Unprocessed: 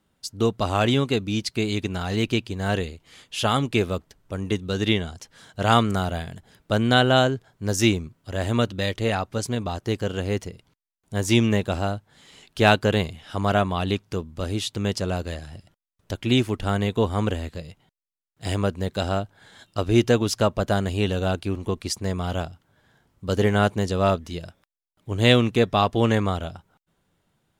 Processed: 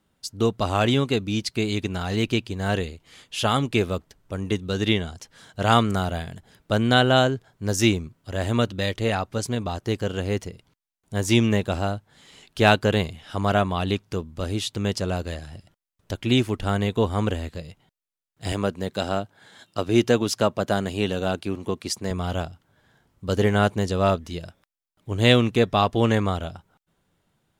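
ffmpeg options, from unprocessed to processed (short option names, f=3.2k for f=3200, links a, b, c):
-filter_complex "[0:a]asettb=1/sr,asplit=3[a][b][c];[a]atrim=end=18.524[d];[b]atrim=start=18.52:end=22.11,asetpts=PTS-STARTPTS,afade=t=in:d=0.004:c=qsin,afade=t=out:st=3.586:d=0.004:c=qsin,highpass=130[e];[c]atrim=start=22.106[f];[d][e]acrossfade=d=0.004:c1=hsin:c2=qsin[g];[g][f]acrossfade=d=0.004:c1=qsin:c2=hsin"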